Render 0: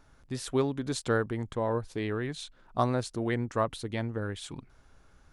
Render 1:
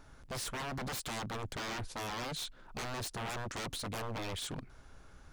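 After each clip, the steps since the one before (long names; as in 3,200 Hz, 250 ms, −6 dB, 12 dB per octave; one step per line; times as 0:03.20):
brickwall limiter −22 dBFS, peak gain reduction 8.5 dB
wave folding −37.5 dBFS
level +3.5 dB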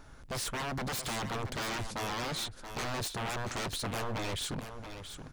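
single-tap delay 678 ms −9.5 dB
level +3.5 dB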